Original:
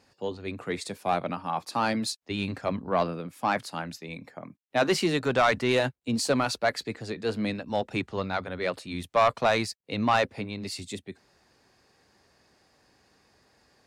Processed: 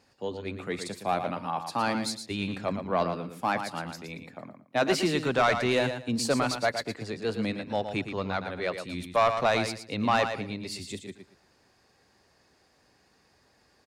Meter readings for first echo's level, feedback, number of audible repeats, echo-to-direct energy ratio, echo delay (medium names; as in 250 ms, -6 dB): -8.0 dB, 22%, 3, -8.0 dB, 115 ms